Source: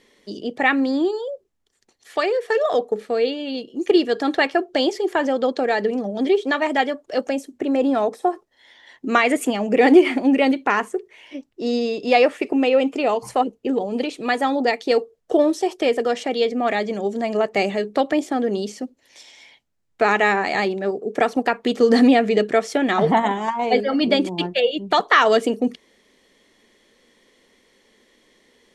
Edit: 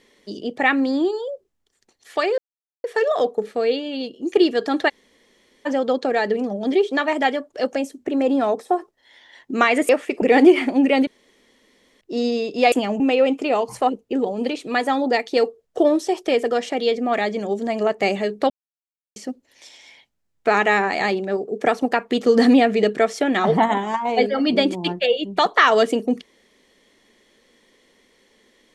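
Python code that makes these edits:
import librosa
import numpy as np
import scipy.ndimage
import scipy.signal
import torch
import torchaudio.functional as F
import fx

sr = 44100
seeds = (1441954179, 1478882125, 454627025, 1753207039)

y = fx.edit(x, sr, fx.insert_silence(at_s=2.38, length_s=0.46),
    fx.room_tone_fill(start_s=4.43, length_s=0.77, crossfade_s=0.02),
    fx.swap(start_s=9.43, length_s=0.28, other_s=12.21, other_length_s=0.33),
    fx.room_tone_fill(start_s=10.56, length_s=0.94),
    fx.silence(start_s=18.04, length_s=0.66), tone=tone)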